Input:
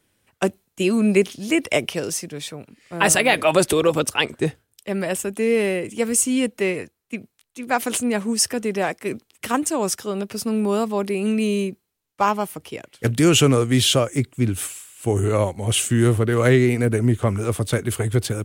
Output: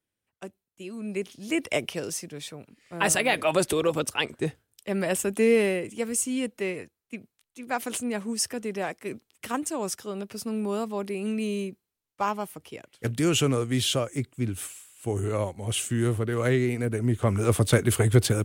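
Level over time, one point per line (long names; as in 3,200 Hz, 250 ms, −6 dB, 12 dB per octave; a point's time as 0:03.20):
0:00.90 −19.5 dB
0:01.58 −6.5 dB
0:04.44 −6.5 dB
0:05.42 0 dB
0:06.06 −8 dB
0:16.99 −8 dB
0:17.53 +1 dB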